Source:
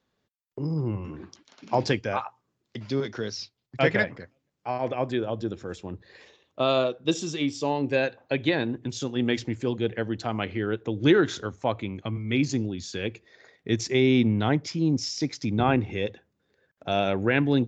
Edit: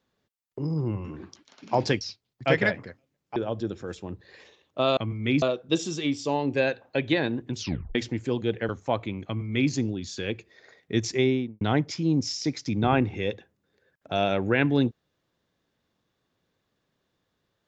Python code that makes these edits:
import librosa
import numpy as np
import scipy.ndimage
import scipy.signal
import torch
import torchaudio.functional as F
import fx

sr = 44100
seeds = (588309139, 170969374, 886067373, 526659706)

y = fx.studio_fade_out(x, sr, start_s=13.9, length_s=0.47)
y = fx.edit(y, sr, fx.cut(start_s=2.01, length_s=1.33),
    fx.cut(start_s=4.69, length_s=0.48),
    fx.tape_stop(start_s=8.94, length_s=0.37),
    fx.cut(start_s=10.05, length_s=1.4),
    fx.duplicate(start_s=12.02, length_s=0.45, to_s=6.78), tone=tone)